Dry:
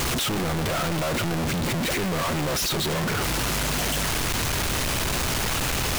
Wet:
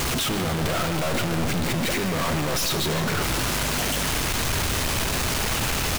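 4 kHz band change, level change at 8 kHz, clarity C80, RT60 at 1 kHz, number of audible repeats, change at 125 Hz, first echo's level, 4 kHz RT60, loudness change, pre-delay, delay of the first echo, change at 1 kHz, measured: +0.5 dB, +0.5 dB, 9.0 dB, 2.4 s, 1, +0.5 dB, -12.5 dB, 2.3 s, +0.5 dB, 4 ms, 0.151 s, +0.5 dB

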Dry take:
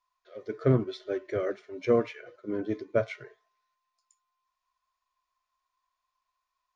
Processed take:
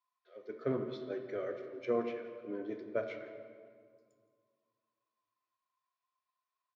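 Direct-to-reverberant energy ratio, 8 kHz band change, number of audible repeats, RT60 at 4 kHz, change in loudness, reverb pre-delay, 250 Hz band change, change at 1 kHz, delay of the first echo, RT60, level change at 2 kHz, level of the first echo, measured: 5.5 dB, n/a, 1, 1.3 s, -9.0 dB, 3 ms, -8.5 dB, -6.5 dB, 0.169 s, 1.9 s, -7.5 dB, -18.0 dB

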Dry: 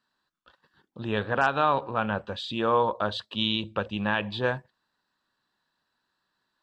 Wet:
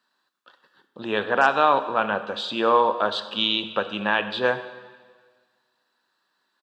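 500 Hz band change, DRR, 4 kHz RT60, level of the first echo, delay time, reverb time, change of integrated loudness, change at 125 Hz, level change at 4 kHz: +5.0 dB, 10.5 dB, 1.5 s, -21.0 dB, 95 ms, 1.6 s, +4.5 dB, -7.5 dB, +5.5 dB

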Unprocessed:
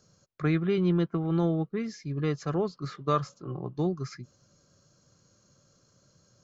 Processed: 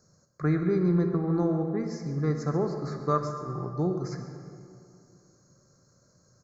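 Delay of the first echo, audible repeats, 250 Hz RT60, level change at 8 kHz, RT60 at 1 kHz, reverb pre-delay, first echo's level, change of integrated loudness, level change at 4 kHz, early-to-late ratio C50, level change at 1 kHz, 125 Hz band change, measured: 0.136 s, 1, 2.6 s, n/a, 2.4 s, 28 ms, -14.5 dB, +1.0 dB, -6.0 dB, 5.5 dB, +1.0 dB, +1.5 dB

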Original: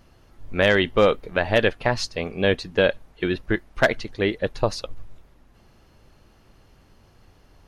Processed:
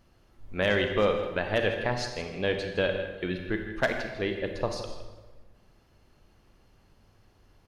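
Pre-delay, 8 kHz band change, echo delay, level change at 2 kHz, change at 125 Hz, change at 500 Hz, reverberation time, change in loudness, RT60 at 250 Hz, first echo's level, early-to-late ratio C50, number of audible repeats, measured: 32 ms, -7.0 dB, 0.162 s, -6.5 dB, -6.0 dB, -6.5 dB, 1.3 s, -6.5 dB, 1.4 s, -13.5 dB, 5.0 dB, 1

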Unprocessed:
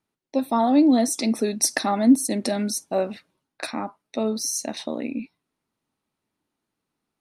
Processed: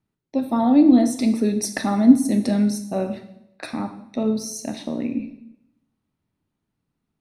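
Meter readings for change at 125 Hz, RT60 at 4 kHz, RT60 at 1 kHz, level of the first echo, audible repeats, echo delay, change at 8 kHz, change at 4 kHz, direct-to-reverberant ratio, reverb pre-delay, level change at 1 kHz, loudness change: +7.0 dB, 0.75 s, 0.75 s, none, none, none, -6.0 dB, -5.0 dB, 7.0 dB, 18 ms, -2.5 dB, +2.5 dB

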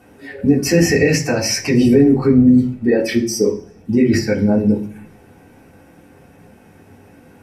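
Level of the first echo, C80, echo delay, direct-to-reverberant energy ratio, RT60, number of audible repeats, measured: none, 16.5 dB, none, -5.0 dB, 0.45 s, none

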